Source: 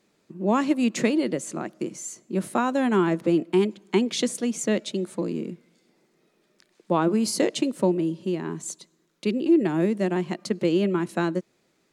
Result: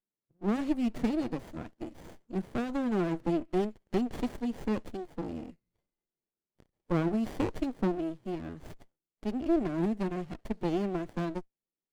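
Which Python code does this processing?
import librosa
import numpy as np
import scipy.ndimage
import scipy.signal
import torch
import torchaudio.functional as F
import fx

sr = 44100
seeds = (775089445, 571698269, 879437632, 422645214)

y = fx.noise_reduce_blind(x, sr, reduce_db=25)
y = fx.running_max(y, sr, window=33)
y = F.gain(torch.from_numpy(y), -6.5).numpy()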